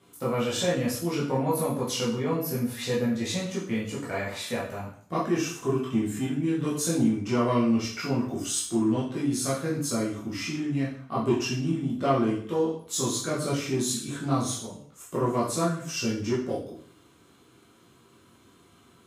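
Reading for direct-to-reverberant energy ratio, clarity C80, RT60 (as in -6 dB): -7.5 dB, 9.0 dB, 0.55 s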